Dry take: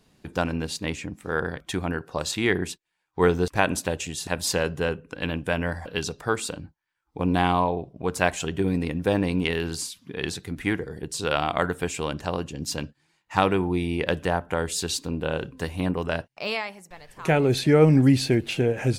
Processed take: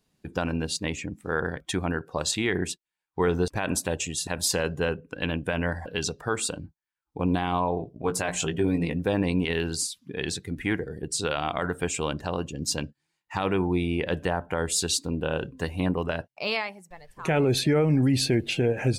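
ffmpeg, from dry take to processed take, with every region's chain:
-filter_complex "[0:a]asettb=1/sr,asplit=3[s0][s1][s2];[s0]atrim=end=7.784[s3];[s1]atrim=start=7.78:end=8.96,asetpts=PTS-STARTPTS,afade=t=in:d=0.004:c=qsin,afade=t=out:st=1.176:d=0.004:c=qsin,bandreject=f=60:t=h:w=6,bandreject=f=120:t=h:w=6,bandreject=f=180:t=h:w=6,bandreject=f=240:t=h:w=6,bandreject=f=300:t=h:w=6,bandreject=f=360:t=h:w=6,bandreject=f=420:t=h:w=6,bandreject=f=480:t=h:w=6,asplit=2[s4][s5];[s5]adelay=18,volume=0.447[s6];[s4][s6]amix=inputs=2:normalize=0,atrim=end_sample=52038[s7];[s2]atrim=start=8.956[s8];[s3][s7]acrossfade=d=0.004:c1=hsin:c2=qsin[s9];[s9][s8]acrossfade=d=0.004:c1=qsin:c2=hsin,afftdn=nr=12:nf=-43,highshelf=f=5500:g=6,alimiter=limit=0.188:level=0:latency=1:release=48"

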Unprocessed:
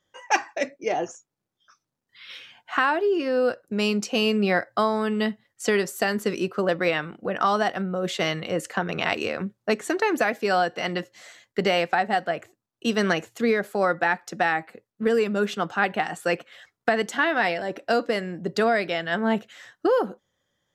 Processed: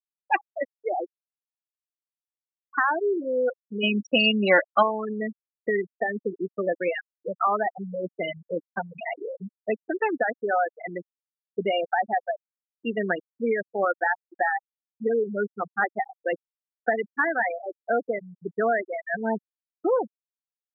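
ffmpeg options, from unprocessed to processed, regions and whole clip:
-filter_complex "[0:a]asettb=1/sr,asplit=3[s0][s1][s2];[s0]atrim=end=3.834[s3];[s1]atrim=start=3.83:end=4.83,asetpts=PTS-STARTPTS,afade=t=in:d=0.004:c=qsin,afade=t=out:st=0.996:d=0.004:c=qsin,asubboost=boost=9.5:cutoff=92,aecho=1:1:3.5:0.62,atrim=end_sample=44100,acontrast=35[s4];[s2]atrim=start=4.826[s5];[s3][s4]acrossfade=d=0.004:c1=hsin:c2=qsin[s6];[s6][s5]acrossfade=d=0.004:c1=qsin:c2=hsin,lowpass=4800,afftfilt=real='re*gte(hypot(re,im),0.224)':imag='im*gte(hypot(re,im),0.224)':win_size=1024:overlap=0.75,highpass=f=340:p=1"

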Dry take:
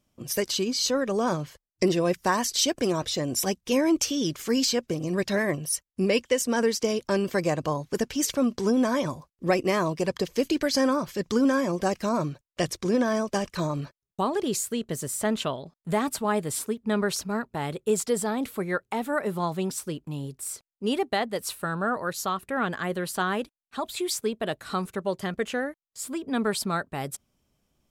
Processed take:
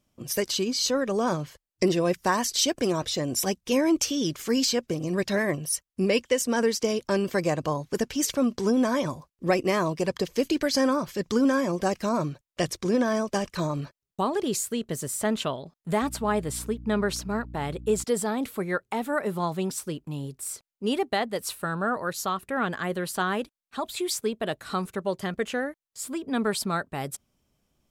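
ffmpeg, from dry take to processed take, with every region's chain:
-filter_complex "[0:a]asettb=1/sr,asplit=3[s0][s1][s2];[s0]atrim=end=16.024[s3];[s1]atrim=start=16.02:end=18.04,asetpts=PTS-STARTPTS,afade=t=in:d=0.004:c=qsin,afade=t=out:st=2.016:d=0.004:c=qsin,highshelf=f=6500:g=-4.5,aeval=exprs='val(0)+0.01*(sin(2*PI*60*n/s)+sin(2*PI*2*60*n/s)/2+sin(2*PI*3*60*n/s)/3+sin(2*PI*4*60*n/s)/4+sin(2*PI*5*60*n/s)/5)':c=same[s4];[s2]atrim=start=18.036[s5];[s3][s4]acrossfade=d=0.004:c1=hsin:c2=qsin[s6];[s6][s5]acrossfade=d=0.004:c1=qsin:c2=hsin"

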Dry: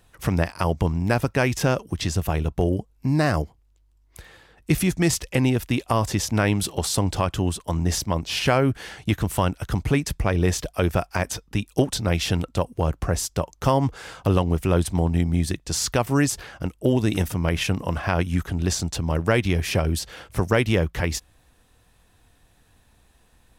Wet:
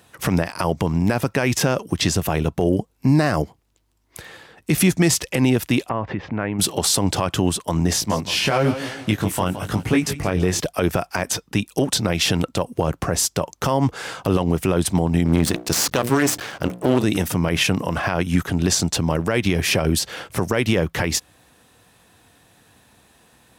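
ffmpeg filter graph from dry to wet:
-filter_complex "[0:a]asettb=1/sr,asplit=3[s0][s1][s2];[s0]atrim=end=5.894[s3];[s1]atrim=start=5.89:end=6.59,asetpts=PTS-STARTPTS,afade=t=in:d=0.004:c=qsin,afade=t=out:st=0.696:d=0.004:c=qsin,lowpass=f=2300:w=0.5412,lowpass=f=2300:w=1.3066,acompressor=threshold=0.0316:ratio=3:attack=3.2:release=140:knee=1:detection=peak[s4];[s2]atrim=start=6.586[s5];[s3][s4]acrossfade=d=0.004:c1=hsin:c2=qsin[s6];[s6][s5]acrossfade=d=0.004:c1=qsin:c2=hsin,asettb=1/sr,asplit=3[s7][s8][s9];[s7]atrim=end=7.934[s10];[s8]atrim=start=7.93:end=10.6,asetpts=PTS-STARTPTS,afade=t=in:d=0.004:c=qsin,afade=t=out:st=2.666:d=0.004:c=qsin,aecho=1:1:166|332|498|664:0.178|0.0782|0.0344|0.0151,atrim=end_sample=117747,flanger=delay=18:depth=4:speed=1[s11];[s9]atrim=start=10.596[s12];[s10][s11]acrossfade=d=0.004:c1=hsin:c2=qsin[s13];[s13][s12]acrossfade=d=0.004:c1=qsin:c2=hsin,asettb=1/sr,asplit=3[s14][s15][s16];[s14]atrim=end=15.254[s17];[s15]atrim=start=15.25:end=17.04,asetpts=PTS-STARTPTS,afade=t=in:d=0.004:c=qsin,afade=t=out:st=1.786:d=0.004:c=qsin,bandreject=f=60:t=h:w=6,bandreject=f=120:t=h:w=6,bandreject=f=180:t=h:w=6,bandreject=f=240:t=h:w=6,bandreject=f=300:t=h:w=6,bandreject=f=360:t=h:w=6,bandreject=f=420:t=h:w=6,bandreject=f=480:t=h:w=6,bandreject=f=540:t=h:w=6,acontrast=30,aeval=exprs='max(val(0),0)':c=same[s18];[s16]atrim=start=17.036[s19];[s17][s18]acrossfade=d=0.004:c1=hsin:c2=qsin[s20];[s20][s19]acrossfade=d=0.004:c1=qsin:c2=hsin,highpass=130,alimiter=limit=0.168:level=0:latency=1:release=79,volume=2.51"

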